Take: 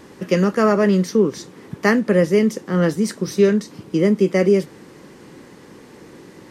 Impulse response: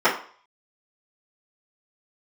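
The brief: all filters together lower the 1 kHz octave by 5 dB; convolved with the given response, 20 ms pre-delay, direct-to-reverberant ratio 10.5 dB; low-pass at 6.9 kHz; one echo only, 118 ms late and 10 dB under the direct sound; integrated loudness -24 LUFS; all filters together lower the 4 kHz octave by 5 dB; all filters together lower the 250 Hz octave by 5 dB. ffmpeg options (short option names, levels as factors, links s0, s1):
-filter_complex "[0:a]lowpass=6900,equalizer=f=250:t=o:g=-7,equalizer=f=1000:t=o:g=-6,equalizer=f=4000:t=o:g=-6,aecho=1:1:118:0.316,asplit=2[s0][s1];[1:a]atrim=start_sample=2205,adelay=20[s2];[s1][s2]afir=irnorm=-1:irlink=0,volume=0.0266[s3];[s0][s3]amix=inputs=2:normalize=0,volume=0.75"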